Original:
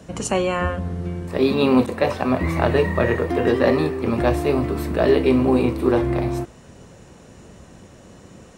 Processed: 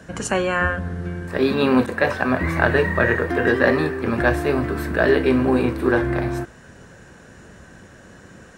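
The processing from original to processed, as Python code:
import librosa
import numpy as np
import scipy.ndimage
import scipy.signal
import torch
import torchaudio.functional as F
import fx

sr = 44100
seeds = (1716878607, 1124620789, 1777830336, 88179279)

y = fx.peak_eq(x, sr, hz=1600.0, db=14.5, octaves=0.38)
y = y * 10.0 ** (-1.0 / 20.0)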